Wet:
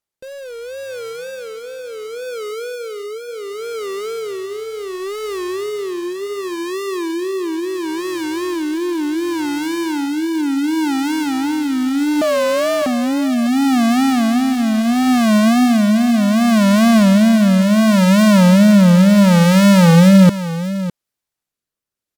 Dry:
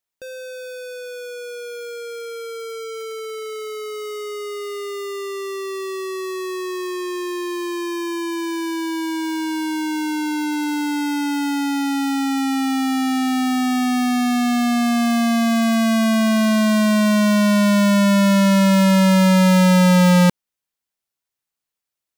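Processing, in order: rotary cabinet horn 0.7 Hz; 12.22–12.87 s: frequency shift +320 Hz; in parallel at -11 dB: sample-rate reducer 3.6 kHz, jitter 0%; on the sum: wow and flutter 150 cents; on a send: delay 605 ms -13 dB; on the sum: trim +3.5 dB

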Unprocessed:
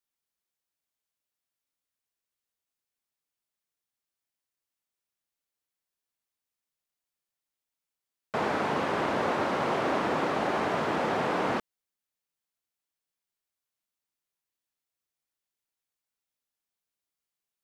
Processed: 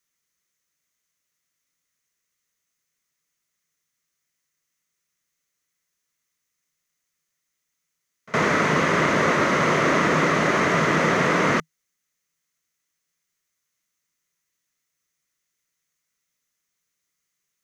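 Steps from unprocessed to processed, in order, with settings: graphic EQ with 31 bands 160 Hz +9 dB, 800 Hz -11 dB, 1.25 kHz +4 dB, 2 kHz +9 dB, 6.3 kHz +11 dB; pre-echo 63 ms -23 dB; trim +7.5 dB

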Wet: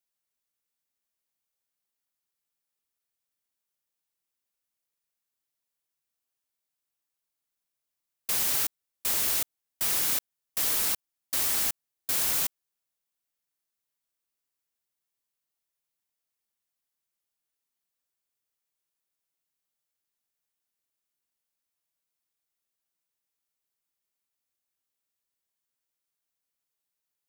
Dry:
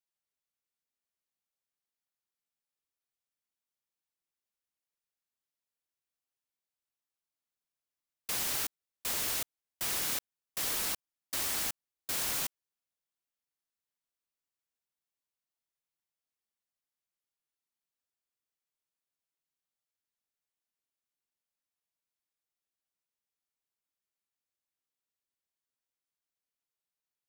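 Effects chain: treble shelf 8 kHz +6 dB; trim +2.5 dB

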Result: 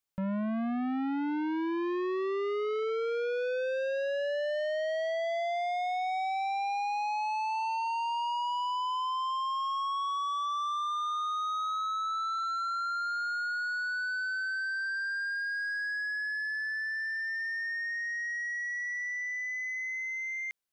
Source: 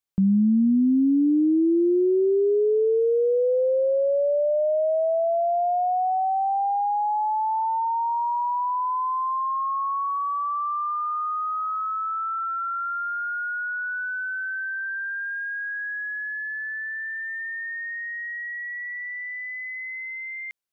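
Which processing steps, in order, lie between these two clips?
saturation -30.5 dBFS, distortion -7 dB

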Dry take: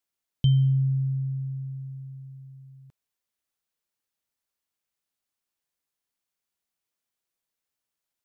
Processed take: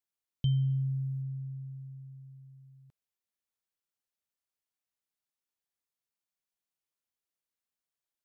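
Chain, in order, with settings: 0.70–1.22 s: treble shelf 2.4 kHz +10 dB; trim -7.5 dB

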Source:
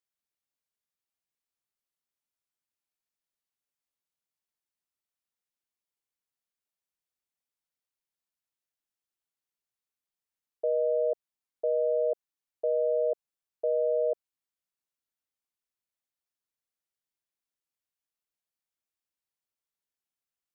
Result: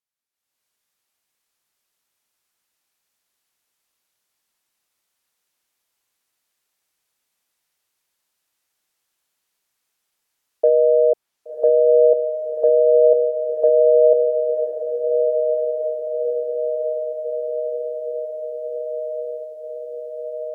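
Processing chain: bass shelf 340 Hz -6.5 dB; low-pass that closes with the level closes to 620 Hz, closed at -26 dBFS; level rider gain up to 16 dB; echo that smears into a reverb 1114 ms, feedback 73%, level -6.5 dB

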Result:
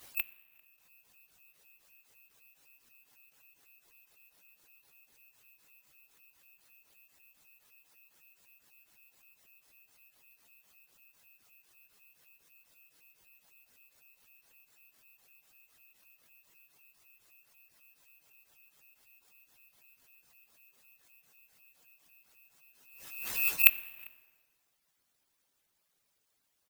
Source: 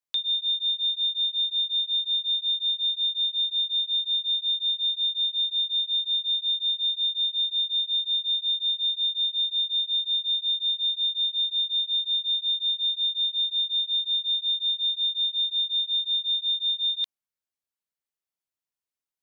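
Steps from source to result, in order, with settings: harmonic-percussive separation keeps percussive; level rider gain up to 16 dB; wide varispeed 0.72×; echo from a far wall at 68 m, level -28 dB; plate-style reverb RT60 1.6 s, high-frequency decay 0.7×, DRR 16 dB; careless resampling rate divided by 3×, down none, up zero stuff; swell ahead of each attack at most 55 dB/s; trim -2.5 dB

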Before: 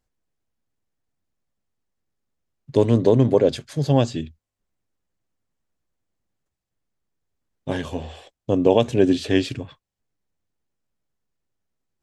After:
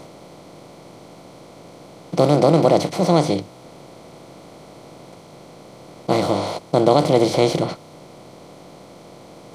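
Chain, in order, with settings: spectral levelling over time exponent 0.4; tape speed +26%; trim -2 dB

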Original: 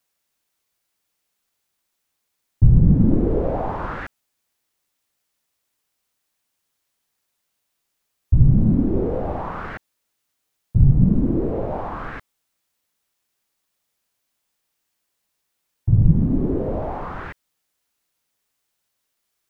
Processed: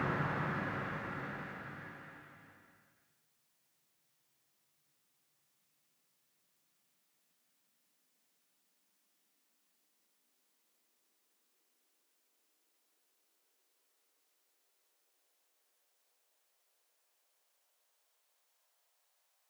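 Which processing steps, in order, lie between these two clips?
high-pass sweep 140 Hz -> 1.6 kHz, 4.78–7.96 s; Paulstretch 7×, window 1.00 s, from 4.09 s; trim -2 dB

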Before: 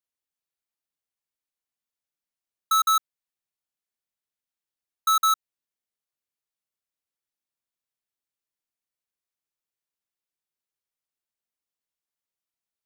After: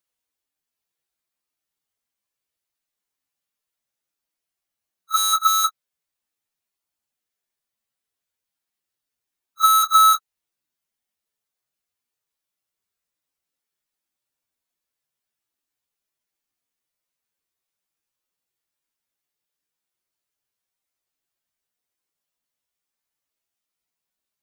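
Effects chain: plain phase-vocoder stretch 1.9×; pre-echo 33 ms -17 dB; trim +8.5 dB

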